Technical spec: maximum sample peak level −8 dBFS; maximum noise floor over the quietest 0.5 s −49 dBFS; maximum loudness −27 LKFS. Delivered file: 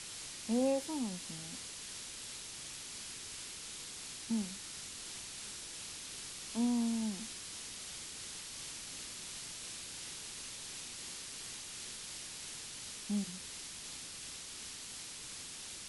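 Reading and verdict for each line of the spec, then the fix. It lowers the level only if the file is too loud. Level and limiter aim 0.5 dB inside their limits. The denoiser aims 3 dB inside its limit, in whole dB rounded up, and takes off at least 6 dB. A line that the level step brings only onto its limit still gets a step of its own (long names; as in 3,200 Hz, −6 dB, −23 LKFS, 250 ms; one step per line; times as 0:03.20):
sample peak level −22.5 dBFS: in spec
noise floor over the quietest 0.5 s −47 dBFS: out of spec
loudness −41.0 LKFS: in spec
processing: broadband denoise 6 dB, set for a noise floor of −47 dBFS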